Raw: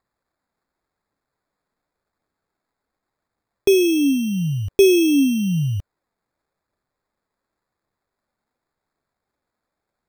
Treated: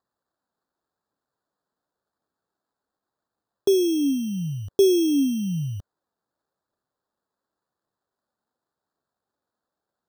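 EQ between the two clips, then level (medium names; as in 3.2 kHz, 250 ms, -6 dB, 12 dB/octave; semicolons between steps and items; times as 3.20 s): high-pass 150 Hz 6 dB/octave; Butterworth band-stop 2.3 kHz, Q 1.6; peaking EQ 12 kHz -3.5 dB 1.1 oct; -3.5 dB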